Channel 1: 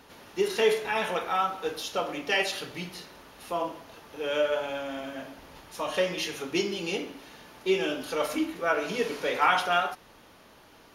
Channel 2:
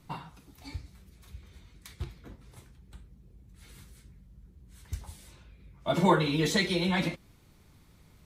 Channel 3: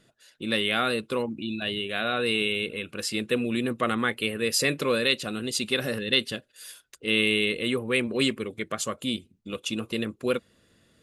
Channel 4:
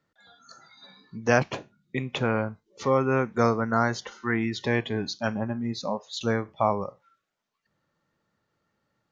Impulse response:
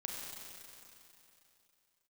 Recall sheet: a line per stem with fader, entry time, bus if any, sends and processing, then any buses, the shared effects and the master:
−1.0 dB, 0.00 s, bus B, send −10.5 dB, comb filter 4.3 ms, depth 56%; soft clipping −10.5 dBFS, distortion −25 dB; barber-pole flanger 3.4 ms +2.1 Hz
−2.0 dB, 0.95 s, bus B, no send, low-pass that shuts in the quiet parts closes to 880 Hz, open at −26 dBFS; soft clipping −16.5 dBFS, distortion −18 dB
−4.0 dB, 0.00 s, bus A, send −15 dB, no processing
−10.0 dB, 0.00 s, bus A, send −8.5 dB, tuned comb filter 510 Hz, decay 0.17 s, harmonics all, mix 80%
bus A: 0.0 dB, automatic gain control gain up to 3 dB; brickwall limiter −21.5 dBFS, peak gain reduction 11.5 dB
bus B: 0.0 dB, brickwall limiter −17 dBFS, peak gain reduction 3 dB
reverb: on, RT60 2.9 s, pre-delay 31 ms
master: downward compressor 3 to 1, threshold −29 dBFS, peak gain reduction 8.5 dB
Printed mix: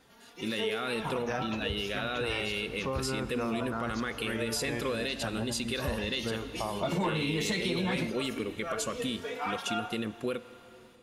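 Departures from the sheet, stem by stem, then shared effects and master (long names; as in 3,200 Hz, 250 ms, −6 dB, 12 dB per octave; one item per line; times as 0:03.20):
stem 1 −1.0 dB → −8.5 dB
stem 2 −2.0 dB → +4.0 dB
stem 4: missing tuned comb filter 510 Hz, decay 0.17 s, harmonics all, mix 80%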